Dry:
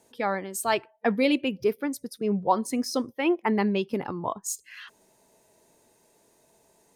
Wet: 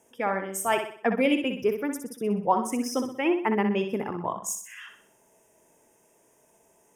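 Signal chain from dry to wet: Butterworth band-stop 4200 Hz, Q 2.1; low shelf 210 Hz -3.5 dB; flutter echo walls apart 10.7 m, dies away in 0.51 s

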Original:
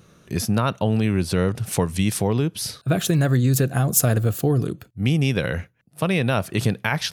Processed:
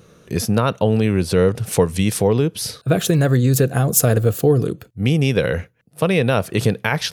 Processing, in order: bell 470 Hz +7.5 dB 0.41 oct; gain +2.5 dB

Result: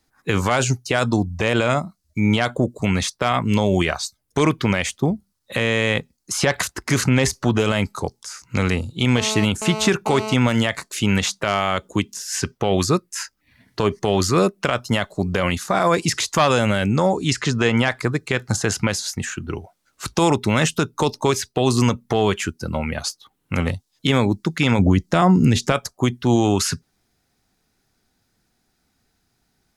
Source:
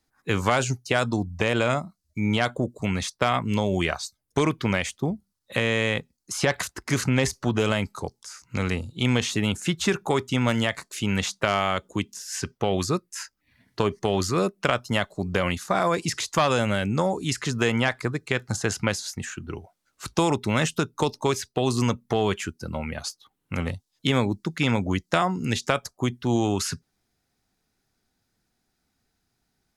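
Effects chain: 9.17–10.34 GSM buzz -34 dBFS; 16.92–17.75 LPF 9900 Hz -> 5800 Hz 12 dB/oct; 24.79–25.72 low shelf 460 Hz +10 dB; maximiser +12 dB; gain -5.5 dB

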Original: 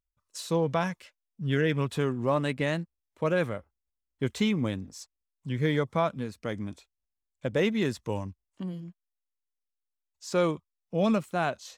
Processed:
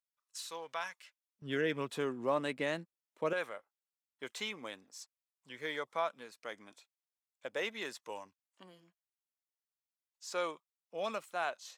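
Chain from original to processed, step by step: HPF 1100 Hz 12 dB/oct, from 1.42 s 290 Hz, from 3.33 s 670 Hz; gain -5 dB

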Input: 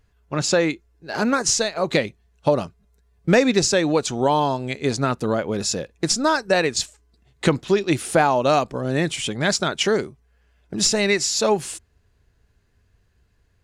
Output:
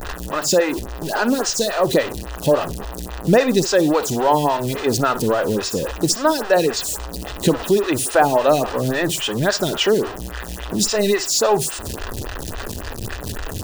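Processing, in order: zero-crossing step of -22.5 dBFS; in parallel at -6.5 dB: bit-crush 5-bit; on the sum: bell 180 Hz -3 dB 0.77 oct; notch 2200 Hz, Q 6.1; on a send: flutter echo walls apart 10.5 m, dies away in 0.25 s; on the sum: photocell phaser 3.6 Hz

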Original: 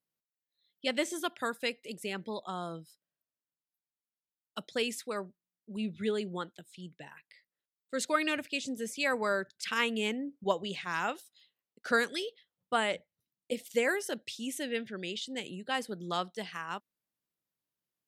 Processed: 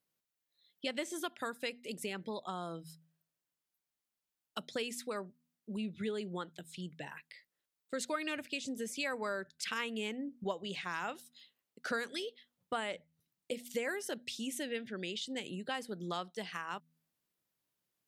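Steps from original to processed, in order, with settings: de-hum 80.74 Hz, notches 3; compressor 2.5:1, threshold -44 dBFS, peak gain reduction 14.5 dB; gain +4.5 dB

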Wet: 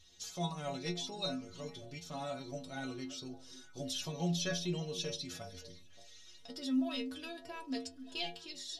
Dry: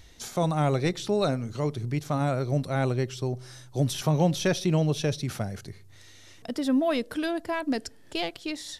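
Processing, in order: band shelf 4500 Hz +9.5 dB; metallic resonator 84 Hz, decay 0.45 s, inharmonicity 0.008; on a send: delay with a stepping band-pass 0.287 s, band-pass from 230 Hz, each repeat 1.4 oct, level -11.5 dB; on the sum: gain -3.5 dB

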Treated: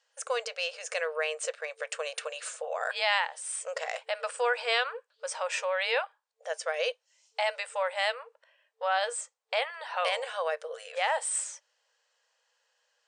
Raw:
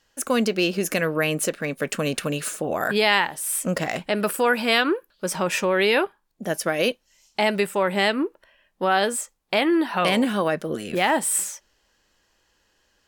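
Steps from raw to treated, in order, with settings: FFT band-pass 450–9300 Hz; gain -7 dB

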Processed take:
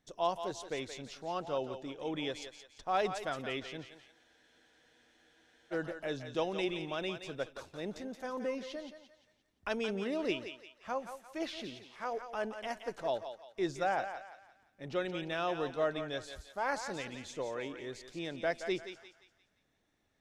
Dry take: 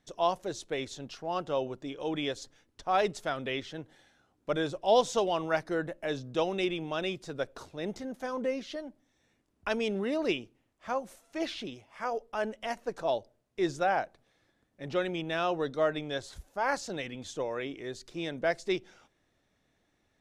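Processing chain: thinning echo 0.173 s, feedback 41%, high-pass 620 Hz, level -7.5 dB; spectral freeze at 4.15, 1.58 s; gain -4.5 dB

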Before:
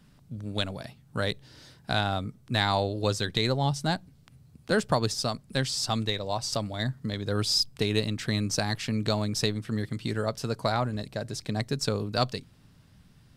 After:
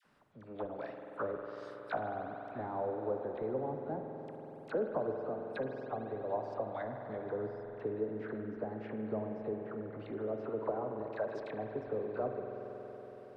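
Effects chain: treble ducked by the level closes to 420 Hz, closed at -25 dBFS; three-band isolator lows -22 dB, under 360 Hz, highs -14 dB, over 2100 Hz; dispersion lows, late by 47 ms, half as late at 1100 Hz; on a send: reverb RT60 5.0 s, pre-delay 46 ms, DRR 3 dB

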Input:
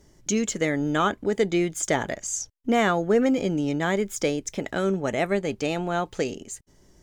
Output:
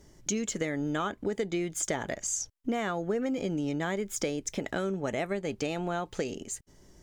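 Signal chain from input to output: compressor 5:1, threshold -28 dBFS, peak gain reduction 11.5 dB

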